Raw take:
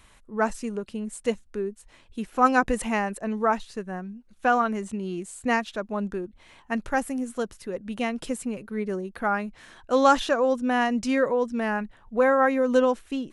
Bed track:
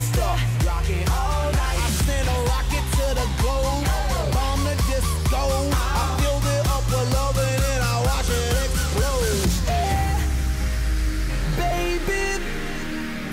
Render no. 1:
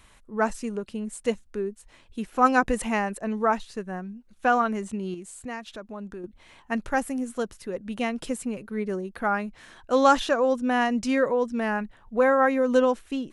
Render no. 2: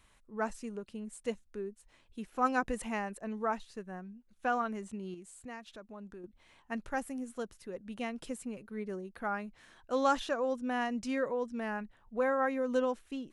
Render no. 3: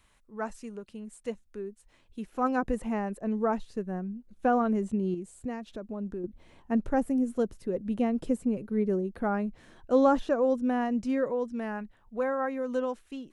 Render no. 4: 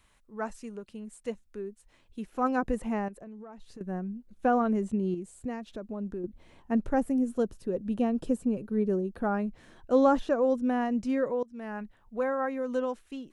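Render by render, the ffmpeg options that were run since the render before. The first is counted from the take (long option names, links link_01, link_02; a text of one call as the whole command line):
ffmpeg -i in.wav -filter_complex "[0:a]asettb=1/sr,asplit=3[link_01][link_02][link_03];[link_01]atrim=end=5.144[link_04];[link_02]atrim=start=5.14:end=6.24,asetpts=PTS-STARTPTS,afade=type=in:duration=0.004:curve=qsin,afade=type=out:start_time=1.096:duration=0.004:curve=qsin,acompressor=threshold=-40dB:ratio=2:attack=3.2:release=140:knee=1:detection=peak[link_05];[link_03]atrim=start=6.236[link_06];[link_04][link_05]acrossfade=duration=0.004:curve1=hsin:curve2=qsin[link_07];[link_07][link_06]acrossfade=duration=0.004:curve1=qsin:curve2=hsin" out.wav
ffmpeg -i in.wav -af "volume=-10dB" out.wav
ffmpeg -i in.wav -filter_complex "[0:a]acrossover=split=610|1700[link_01][link_02][link_03];[link_01]dynaudnorm=framelen=300:gausssize=21:maxgain=13dB[link_04];[link_03]alimiter=level_in=17dB:limit=-24dB:level=0:latency=1:release=189,volume=-17dB[link_05];[link_04][link_02][link_05]amix=inputs=3:normalize=0" out.wav
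ffmpeg -i in.wav -filter_complex "[0:a]asettb=1/sr,asplit=3[link_01][link_02][link_03];[link_01]atrim=end=3.084[link_04];[link_02]atrim=start=3.08:end=3.81,asetpts=PTS-STARTPTS,afade=type=in:duration=0.004:curve=qsin,afade=type=out:start_time=0.726:duration=0.004:curve=qsin,acompressor=threshold=-42dB:ratio=10:attack=3.2:release=140:knee=1:detection=peak[link_05];[link_03]atrim=start=3.806[link_06];[link_04][link_05]acrossfade=duration=0.004:curve1=hsin:curve2=qsin[link_07];[link_07][link_06]acrossfade=duration=0.004:curve1=qsin:curve2=hsin,asettb=1/sr,asplit=3[link_08][link_09][link_10];[link_08]atrim=end=7.284[link_11];[link_09]atrim=start=7.28:end=9.39,asetpts=PTS-STARTPTS,afade=type=in:duration=0.004:curve=qsin,afade=type=out:start_time=2.106:duration=0.004:curve=qsin,bandreject=frequency=2100:width=6.5[link_12];[link_10]atrim=start=9.386[link_13];[link_11][link_12]acrossfade=duration=0.004:curve1=hsin:curve2=qsin[link_14];[link_14][link_13]acrossfade=duration=0.004:curve1=qsin:curve2=hsin,asplit=2[link_15][link_16];[link_15]atrim=end=11.43,asetpts=PTS-STARTPTS,afade=type=out:start_time=11.426:duration=0.004:curve=hsin:silence=0.0891251[link_17];[link_16]atrim=start=11.43,asetpts=PTS-STARTPTS,afade=type=in:duration=0.4:silence=0.0891251[link_18];[link_17][link_18]concat=n=2:v=0:a=1" out.wav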